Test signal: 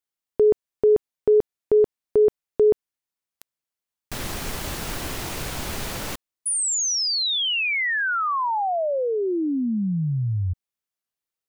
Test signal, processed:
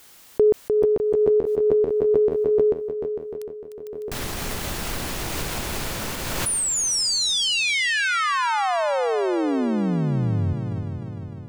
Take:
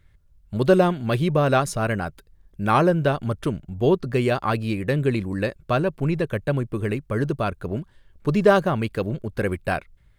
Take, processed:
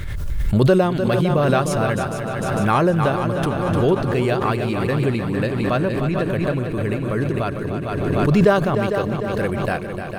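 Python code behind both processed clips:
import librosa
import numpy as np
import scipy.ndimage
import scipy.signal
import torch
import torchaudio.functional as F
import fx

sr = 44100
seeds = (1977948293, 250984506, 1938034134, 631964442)

y = fx.echo_heads(x, sr, ms=151, heads='second and third', feedback_pct=59, wet_db=-9.0)
y = fx.pre_swell(y, sr, db_per_s=23.0)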